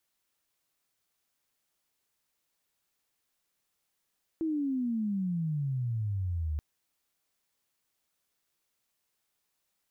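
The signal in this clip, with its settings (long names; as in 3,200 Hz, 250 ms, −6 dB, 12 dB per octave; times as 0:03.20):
glide logarithmic 330 Hz → 73 Hz −27.5 dBFS → −29 dBFS 2.18 s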